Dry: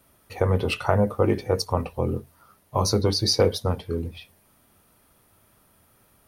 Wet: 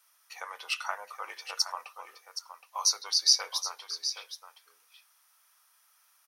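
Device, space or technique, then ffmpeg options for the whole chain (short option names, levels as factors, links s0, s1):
headphones lying on a table: -filter_complex "[0:a]asettb=1/sr,asplit=3[s0][s1][s2];[s0]atrim=end=1.874[s3];[s1]atrim=start=1.87:end=2.89,asetpts=PTS-STARTPTS,afade=t=in:d=0.004:c=qsin,afade=t=out:st=1.016:d=0.004:c=qsin,highpass=260[s4];[s2]atrim=start=2.886[s5];[s3][s4]acrossfade=d=0.004:c1=hsin:c2=qsin[s6];[s6][s5]acrossfade=d=0.004:c1=qsin:c2=hsin,highpass=f=1000:w=0.5412,highpass=f=1000:w=1.3066,equalizer=f=5700:t=o:w=0.51:g=10,aecho=1:1:770:0.299,volume=0.596"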